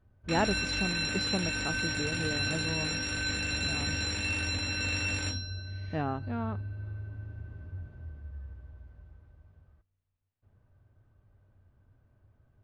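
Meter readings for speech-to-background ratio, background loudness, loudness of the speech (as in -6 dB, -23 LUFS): -4.0 dB, -32.0 LUFS, -36.0 LUFS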